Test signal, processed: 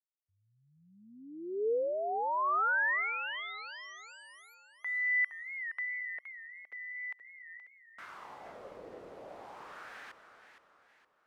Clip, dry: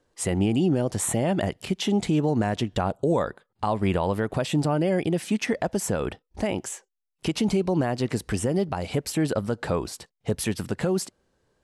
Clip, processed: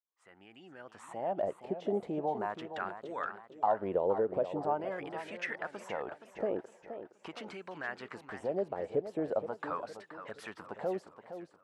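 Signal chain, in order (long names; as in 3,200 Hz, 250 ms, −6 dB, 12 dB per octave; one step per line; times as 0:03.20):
fade in at the beginning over 1.67 s
LFO wah 0.42 Hz 460–1,700 Hz, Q 3.1
feedback echo with a swinging delay time 469 ms, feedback 42%, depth 151 cents, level −10.5 dB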